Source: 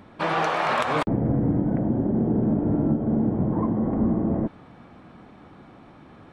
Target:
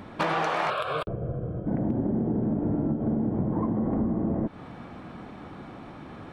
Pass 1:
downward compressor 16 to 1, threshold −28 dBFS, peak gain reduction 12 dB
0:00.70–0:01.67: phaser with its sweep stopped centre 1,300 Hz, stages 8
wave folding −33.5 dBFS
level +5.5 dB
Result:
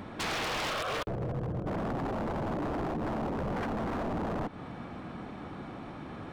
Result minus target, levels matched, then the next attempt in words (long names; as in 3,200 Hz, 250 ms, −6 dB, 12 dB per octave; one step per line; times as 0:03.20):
wave folding: distortion +39 dB
downward compressor 16 to 1, threshold −28 dBFS, peak gain reduction 12 dB
0:00.70–0:01.67: phaser with its sweep stopped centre 1,300 Hz, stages 8
wave folding −21.5 dBFS
level +5.5 dB